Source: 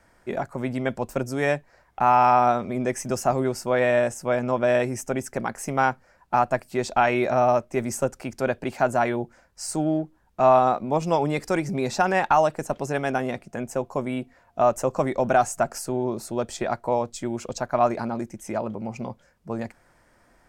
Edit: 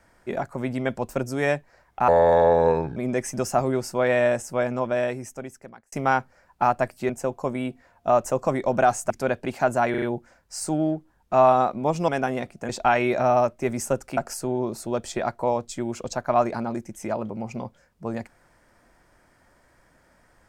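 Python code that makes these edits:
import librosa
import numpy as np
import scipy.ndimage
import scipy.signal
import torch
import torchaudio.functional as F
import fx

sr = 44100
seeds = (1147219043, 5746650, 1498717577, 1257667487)

y = fx.edit(x, sr, fx.speed_span(start_s=2.08, length_s=0.6, speed=0.68),
    fx.fade_out_span(start_s=4.22, length_s=1.42),
    fx.swap(start_s=6.81, length_s=1.48, other_s=13.61, other_length_s=2.01),
    fx.stutter(start_s=9.09, slice_s=0.04, count=4),
    fx.cut(start_s=11.15, length_s=1.85), tone=tone)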